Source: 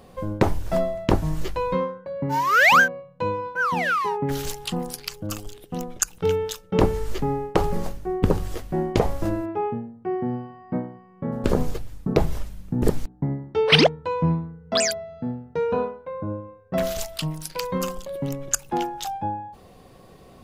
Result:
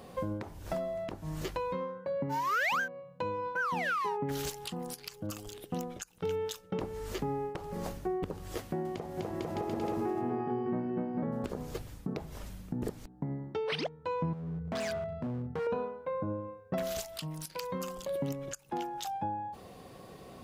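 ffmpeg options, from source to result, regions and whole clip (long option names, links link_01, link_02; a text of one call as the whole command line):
ffmpeg -i in.wav -filter_complex "[0:a]asettb=1/sr,asplit=3[link_01][link_02][link_03];[link_01]atrim=end=8.604[link_04];[link_02]atrim=start=8.6:end=11.24,asetpts=PTS-STARTPTS,afade=type=in:duration=0.004:curve=qsin,afade=type=out:start_time=2.636:duration=0.004:curve=qsin,highpass=76,aecho=1:1:250|450|610|738|840.4|922.3:0.794|0.631|0.501|0.398|0.316|0.251,atrim=end_sample=116424[link_05];[link_03]atrim=start=11.236[link_06];[link_04][link_05]acrossfade=duration=0.004:curve1=hsin:curve2=qsin[link_07];[link_07][link_06]acrossfade=duration=0.004:curve1=qsin:curve2=hsin,asettb=1/sr,asplit=3[link_08][link_09][link_10];[link_08]atrim=end=14.334[link_11];[link_09]atrim=start=14.33:end=15.67,asetpts=PTS-STARTPTS,afade=type=in:duration=0.004:curve=qsin,afade=type=out:start_time=1.336:duration=0.004:curve=qsin,bass=frequency=250:gain=12,treble=frequency=4000:gain=-15,acompressor=threshold=-28dB:ratio=3:attack=3.2:release=140:knee=1:detection=peak,volume=30.5dB,asoftclip=hard,volume=-30.5dB[link_12];[link_10]atrim=start=15.666[link_13];[link_11][link_12]acrossfade=duration=0.004:curve1=hsin:curve2=qsin[link_14];[link_14][link_13]acrossfade=duration=0.004:curve1=qsin:curve2=hsin,highpass=frequency=100:poles=1,acompressor=threshold=-31dB:ratio=4,alimiter=limit=-23.5dB:level=0:latency=1:release=319" out.wav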